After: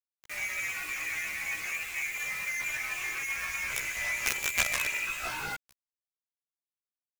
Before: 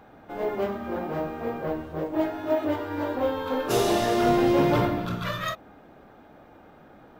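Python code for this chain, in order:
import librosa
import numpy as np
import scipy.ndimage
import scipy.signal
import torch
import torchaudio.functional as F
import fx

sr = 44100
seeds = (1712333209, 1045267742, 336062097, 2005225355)

y = fx.freq_invert(x, sr, carrier_hz=2700)
y = fx.quant_companded(y, sr, bits=2)
y = fx.chorus_voices(y, sr, voices=6, hz=0.42, base_ms=15, depth_ms=1.5, mix_pct=55)
y = y * 10.0 ** (-5.5 / 20.0)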